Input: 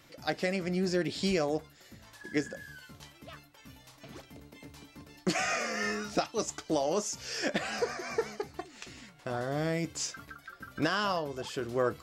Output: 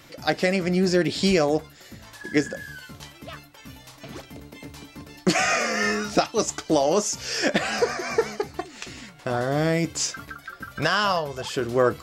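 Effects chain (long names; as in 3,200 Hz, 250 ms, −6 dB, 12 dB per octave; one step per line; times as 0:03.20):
0:10.64–0:11.51: parametric band 300 Hz −11.5 dB 0.76 octaves
level +9 dB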